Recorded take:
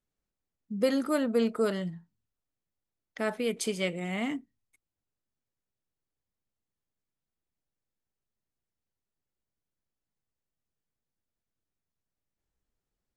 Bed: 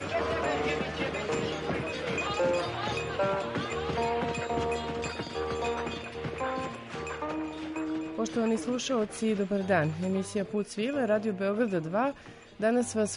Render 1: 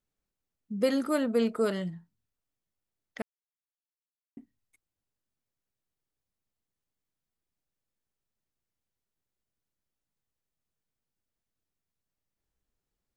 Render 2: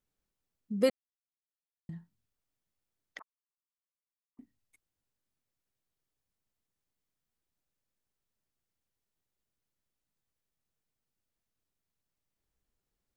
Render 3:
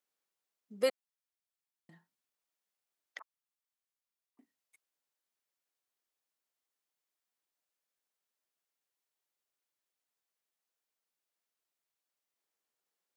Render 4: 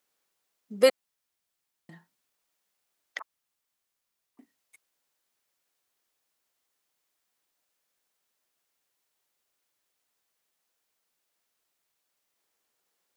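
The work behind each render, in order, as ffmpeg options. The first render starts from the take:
ffmpeg -i in.wav -filter_complex "[0:a]asplit=3[link_01][link_02][link_03];[link_01]atrim=end=3.22,asetpts=PTS-STARTPTS,afade=type=out:start_time=3.216:duration=0.004:curve=hsin[link_04];[link_02]atrim=start=3.22:end=4.37,asetpts=PTS-STARTPTS,volume=0[link_05];[link_03]atrim=start=4.37,asetpts=PTS-STARTPTS,afade=type=in:duration=0.004:curve=hsin[link_06];[link_04][link_05][link_06]concat=n=3:v=0:a=1" out.wav
ffmpeg -i in.wav -filter_complex "[0:a]asettb=1/sr,asplit=3[link_01][link_02][link_03];[link_01]atrim=end=3.194[link_04];[link_02]atrim=start=3.19:end=4.39,asetpts=PTS-STARTPTS,afade=type=in:duration=0.004:curve=qsin,afade=type=out:start_time=1.196:duration=0.004:curve=qsin,asuperpass=centerf=1100:order=4:qfactor=4.1[link_05];[link_03]atrim=start=4.386[link_06];[link_04][link_05]acrossfade=duration=0.004:curve1=hsin:curve2=qsin[link_07];[link_07][link_06]acrossfade=duration=0.004:curve1=qsin:curve2=hsin,asplit=3[link_08][link_09][link_10];[link_08]atrim=end=0.9,asetpts=PTS-STARTPTS,afade=type=out:start_time=0.896:duration=0.004:curve=hsin[link_11];[link_09]atrim=start=0.9:end=1.89,asetpts=PTS-STARTPTS,volume=0[link_12];[link_10]atrim=start=1.89,asetpts=PTS-STARTPTS,afade=type=in:duration=0.004:curve=hsin[link_13];[link_11][link_12][link_13]concat=n=3:v=0:a=1" out.wav
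ffmpeg -i in.wav -af "highpass=510" out.wav
ffmpeg -i in.wav -af "volume=10dB" out.wav

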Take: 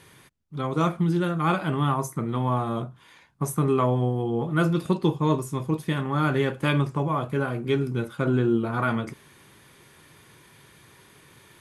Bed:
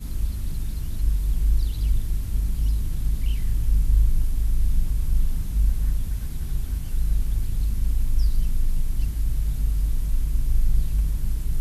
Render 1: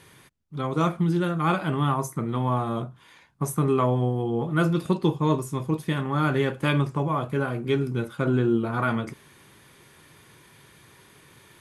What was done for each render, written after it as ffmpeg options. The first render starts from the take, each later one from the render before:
ffmpeg -i in.wav -af anull out.wav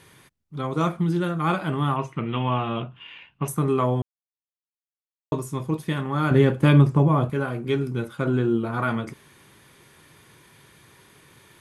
ffmpeg -i in.wav -filter_complex "[0:a]asettb=1/sr,asplit=3[link_01][link_02][link_03];[link_01]atrim=end=1.964[link_04];[link_02]atrim=start=1.96:end=3.48,asetpts=PTS-STARTPTS,afade=type=in:duration=0.004:curve=qsin,afade=type=out:start_time=1.516:duration=0.004:curve=qsin,lowpass=frequency=2800:width_type=q:width=14[link_05];[link_03]atrim=start=3.476[link_06];[link_04][link_05]acrossfade=duration=0.004:curve1=hsin:curve2=qsin[link_07];[link_07][link_06]acrossfade=duration=0.004:curve1=qsin:curve2=hsin,asettb=1/sr,asplit=3[link_08][link_09][link_10];[link_08]atrim=end=6.314[link_11];[link_09]atrim=start=6.31:end=7.3,asetpts=PTS-STARTPTS,afade=type=in:duration=0.004:curve=qsin,afade=type=out:start_time=0.986:duration=0.004:curve=qsin,lowshelf=frequency=490:gain=10[link_12];[link_10]atrim=start=7.296[link_13];[link_11][link_12]acrossfade=duration=0.004:curve1=hsin:curve2=qsin[link_14];[link_14][link_13]acrossfade=duration=0.004:curve1=qsin:curve2=hsin,asplit=3[link_15][link_16][link_17];[link_15]atrim=end=4.02,asetpts=PTS-STARTPTS,afade=type=out:start_time=4.016:duration=0.004:curve=hsin[link_18];[link_16]atrim=start=4.02:end=5.32,asetpts=PTS-STARTPTS,volume=0[link_19];[link_17]atrim=start=5.32,asetpts=PTS-STARTPTS,afade=type=in:duration=0.004:curve=hsin[link_20];[link_18][link_19][link_20]concat=n=3:v=0:a=1" out.wav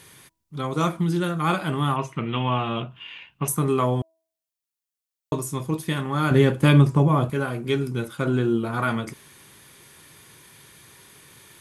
ffmpeg -i in.wav -af "highshelf=frequency=3600:gain=9,bandreject=frequency=324.4:width_type=h:width=4,bandreject=frequency=648.8:width_type=h:width=4,bandreject=frequency=973.2:width_type=h:width=4" out.wav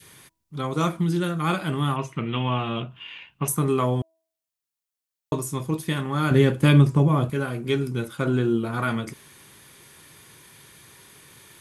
ffmpeg -i in.wav -af "adynamicequalizer=threshold=0.0141:dfrequency=880:dqfactor=1:tfrequency=880:tqfactor=1:attack=5:release=100:ratio=0.375:range=2:mode=cutabove:tftype=bell" out.wav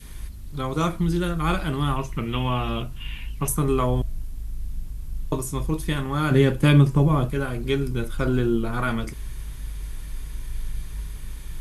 ffmpeg -i in.wav -i bed.wav -filter_complex "[1:a]volume=-10dB[link_01];[0:a][link_01]amix=inputs=2:normalize=0" out.wav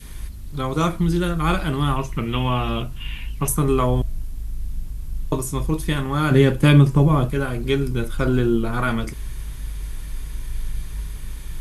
ffmpeg -i in.wav -af "volume=3dB,alimiter=limit=-3dB:level=0:latency=1" out.wav

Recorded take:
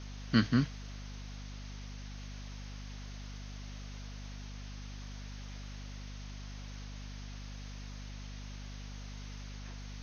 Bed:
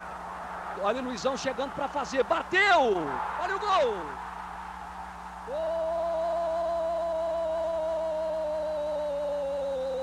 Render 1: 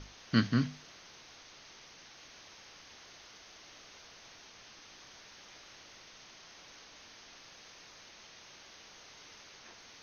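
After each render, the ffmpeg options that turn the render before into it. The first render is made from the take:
ffmpeg -i in.wav -af "bandreject=frequency=50:width_type=h:width=6,bandreject=frequency=100:width_type=h:width=6,bandreject=frequency=150:width_type=h:width=6,bandreject=frequency=200:width_type=h:width=6,bandreject=frequency=250:width_type=h:width=6" out.wav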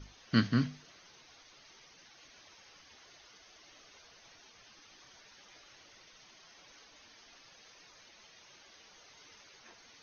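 ffmpeg -i in.wav -af "afftdn=noise_reduction=9:noise_floor=-55" out.wav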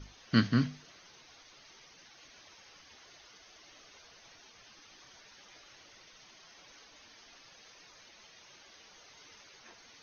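ffmpeg -i in.wav -af "volume=1.5dB" out.wav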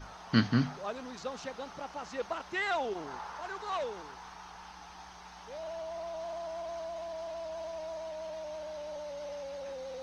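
ffmpeg -i in.wav -i bed.wav -filter_complex "[1:a]volume=-10.5dB[link_01];[0:a][link_01]amix=inputs=2:normalize=0" out.wav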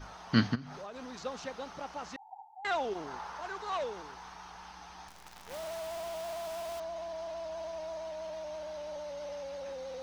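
ffmpeg -i in.wav -filter_complex "[0:a]asplit=3[link_01][link_02][link_03];[link_01]afade=type=out:start_time=0.54:duration=0.02[link_04];[link_02]acompressor=threshold=-39dB:ratio=16:attack=3.2:release=140:knee=1:detection=peak,afade=type=in:start_time=0.54:duration=0.02,afade=type=out:start_time=1.21:duration=0.02[link_05];[link_03]afade=type=in:start_time=1.21:duration=0.02[link_06];[link_04][link_05][link_06]amix=inputs=3:normalize=0,asettb=1/sr,asplit=3[link_07][link_08][link_09];[link_07]atrim=end=2.164[link_10];[link_08]atrim=start=2.16:end=2.65,asetpts=PTS-STARTPTS,afade=type=in:duration=0.004:curve=qsin,afade=type=out:start_time=0.486:duration=0.004:curve=qsin,asuperpass=centerf=820:order=12:qfactor=4.6[link_11];[link_09]atrim=start=2.646[link_12];[link_10][link_11]acrossfade=duration=0.004:curve1=hsin:curve2=qsin[link_13];[link_13][link_12]acrossfade=duration=0.004:curve1=qsin:curve2=hsin,asettb=1/sr,asplit=3[link_14][link_15][link_16];[link_14]atrim=end=5.084[link_17];[link_15]atrim=start=5.08:end=6.8,asetpts=PTS-STARTPTS,afade=type=in:duration=0.004:curve=qsin,afade=type=out:start_time=1.716:duration=0.004:curve=qsin,acrusher=bits=8:dc=4:mix=0:aa=0.000001[link_18];[link_16]atrim=start=6.796[link_19];[link_17][link_18]acrossfade=duration=0.004:curve1=hsin:curve2=qsin[link_20];[link_20][link_19]acrossfade=duration=0.004:curve1=qsin:curve2=hsin" out.wav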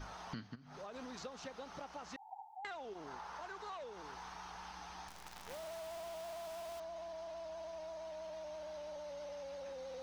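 ffmpeg -i in.wav -af "acompressor=threshold=-44dB:ratio=10" out.wav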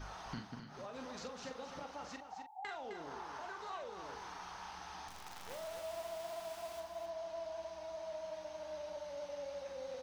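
ffmpeg -i in.wav -filter_complex "[0:a]asplit=2[link_01][link_02];[link_02]adelay=42,volume=-6.5dB[link_03];[link_01][link_03]amix=inputs=2:normalize=0,aecho=1:1:260:0.398" out.wav

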